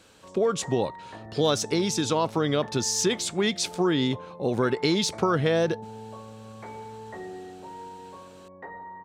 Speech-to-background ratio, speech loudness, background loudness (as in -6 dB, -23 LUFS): 17.0 dB, -25.5 LUFS, -42.5 LUFS